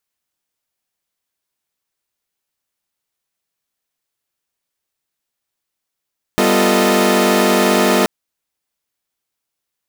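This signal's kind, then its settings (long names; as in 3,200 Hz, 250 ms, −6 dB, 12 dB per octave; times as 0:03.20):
held notes G3/B3/F4/A4/D#5 saw, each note −15.5 dBFS 1.68 s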